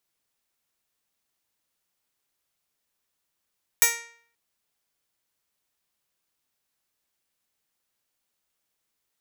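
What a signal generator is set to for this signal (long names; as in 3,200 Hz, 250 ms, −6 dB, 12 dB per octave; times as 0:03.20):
Karplus-Strong string A#4, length 0.53 s, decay 0.57 s, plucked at 0.11, bright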